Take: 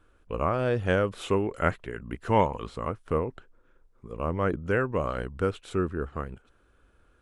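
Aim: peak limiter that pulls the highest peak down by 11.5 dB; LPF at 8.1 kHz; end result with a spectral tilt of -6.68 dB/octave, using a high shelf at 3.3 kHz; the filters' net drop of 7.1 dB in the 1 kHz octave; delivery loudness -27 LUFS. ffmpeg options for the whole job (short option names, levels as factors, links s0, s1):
-af "lowpass=8100,equalizer=f=1000:t=o:g=-8.5,highshelf=f=3300:g=-4.5,volume=2.66,alimiter=limit=0.2:level=0:latency=1"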